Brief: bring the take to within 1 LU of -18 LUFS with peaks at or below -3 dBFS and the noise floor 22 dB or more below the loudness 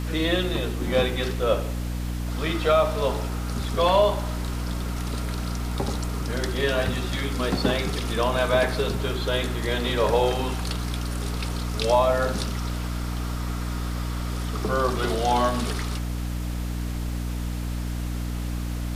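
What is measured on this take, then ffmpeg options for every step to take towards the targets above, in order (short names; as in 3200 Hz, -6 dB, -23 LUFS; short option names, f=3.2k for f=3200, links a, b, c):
hum 60 Hz; harmonics up to 300 Hz; hum level -26 dBFS; noise floor -29 dBFS; noise floor target -48 dBFS; loudness -26.0 LUFS; peak -8.5 dBFS; loudness target -18.0 LUFS
-> -af "bandreject=f=60:t=h:w=6,bandreject=f=120:t=h:w=6,bandreject=f=180:t=h:w=6,bandreject=f=240:t=h:w=6,bandreject=f=300:t=h:w=6"
-af "afftdn=nr=19:nf=-29"
-af "volume=8dB,alimiter=limit=-3dB:level=0:latency=1"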